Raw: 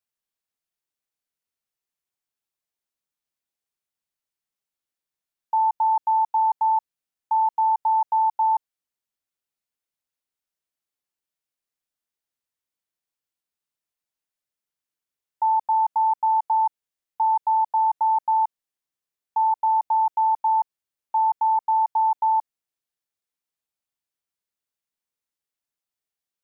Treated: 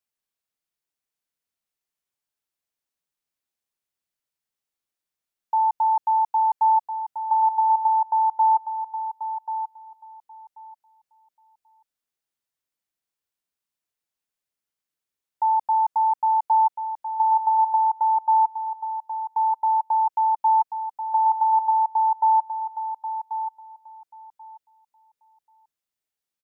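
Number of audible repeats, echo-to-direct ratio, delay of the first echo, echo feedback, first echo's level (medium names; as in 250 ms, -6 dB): 2, -9.0 dB, 1086 ms, 17%, -9.0 dB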